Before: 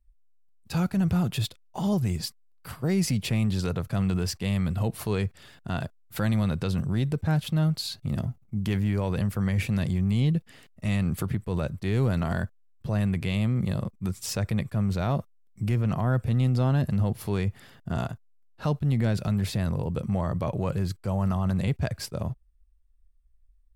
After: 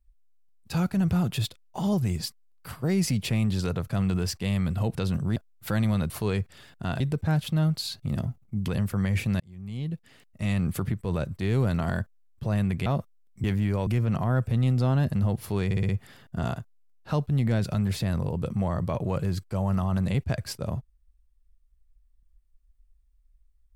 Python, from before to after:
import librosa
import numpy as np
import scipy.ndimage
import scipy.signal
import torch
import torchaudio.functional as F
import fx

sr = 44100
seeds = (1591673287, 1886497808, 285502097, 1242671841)

y = fx.edit(x, sr, fx.swap(start_s=4.95, length_s=0.9, other_s=6.59, other_length_s=0.41),
    fx.move(start_s=8.68, length_s=0.43, to_s=15.64),
    fx.fade_in_span(start_s=9.83, length_s=1.18),
    fx.cut(start_s=13.29, length_s=1.77),
    fx.stutter(start_s=17.42, slice_s=0.06, count=5), tone=tone)